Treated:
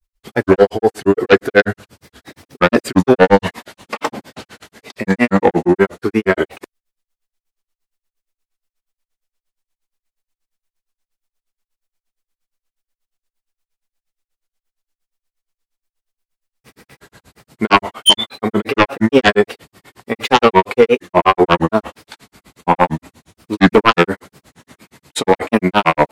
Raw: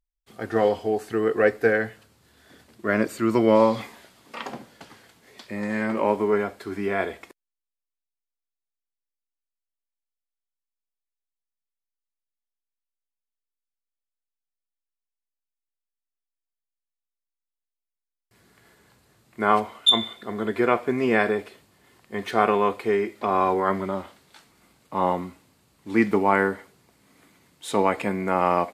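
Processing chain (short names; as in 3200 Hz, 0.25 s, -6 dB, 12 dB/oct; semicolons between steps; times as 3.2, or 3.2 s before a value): sine folder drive 10 dB, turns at -4.5 dBFS; grains 97 ms, grains 7.7/s, spray 10 ms, pitch spread up and down by 3 st; tempo 1.1×; gain +3.5 dB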